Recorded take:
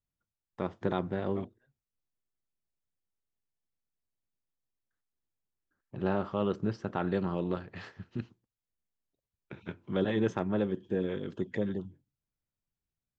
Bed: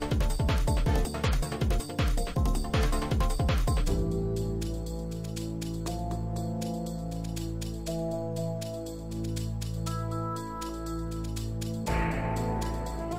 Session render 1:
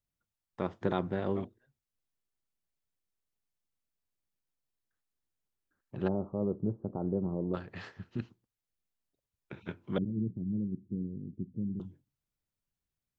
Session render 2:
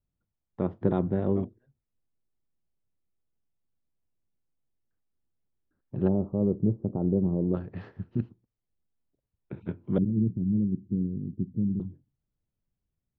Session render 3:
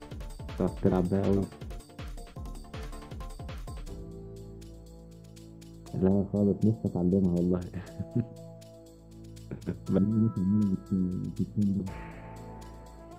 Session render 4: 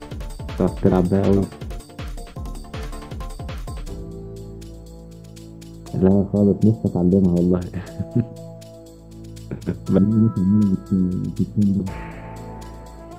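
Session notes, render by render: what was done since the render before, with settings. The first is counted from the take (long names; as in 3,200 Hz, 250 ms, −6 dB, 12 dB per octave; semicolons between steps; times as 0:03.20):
0:06.08–0:07.54: Gaussian smoothing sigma 12 samples; 0:09.98–0:11.80: inverse Chebyshev low-pass filter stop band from 1,500 Hz, stop band 80 dB
low-pass filter 3,900 Hz; tilt shelving filter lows +9 dB, about 800 Hz
mix in bed −14 dB
level +9.5 dB; brickwall limiter −2 dBFS, peak gain reduction 1 dB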